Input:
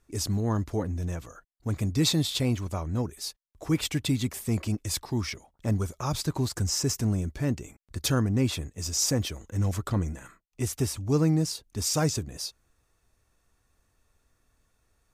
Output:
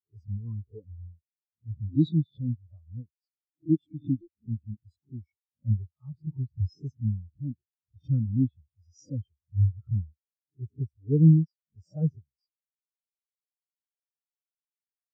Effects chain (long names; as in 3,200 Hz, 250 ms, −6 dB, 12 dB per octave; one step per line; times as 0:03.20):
peak hold with a rise ahead of every peak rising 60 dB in 0.50 s
buffer that repeats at 0:04.21, samples 256, times 10
every bin expanded away from the loudest bin 4 to 1
level +1.5 dB